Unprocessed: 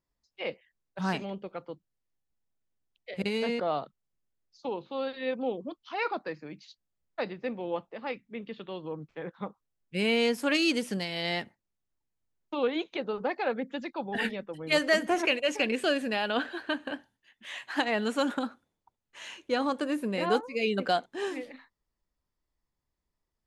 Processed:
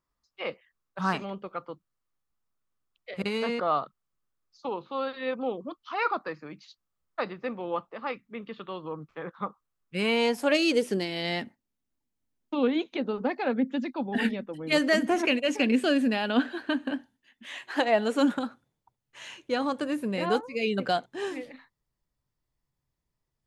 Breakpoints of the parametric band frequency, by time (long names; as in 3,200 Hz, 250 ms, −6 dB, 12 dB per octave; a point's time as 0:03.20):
parametric band +11.5 dB 0.53 octaves
0:10.03 1,200 Hz
0:11.26 250 Hz
0:17.50 250 Hz
0:18.02 800 Hz
0:18.39 130 Hz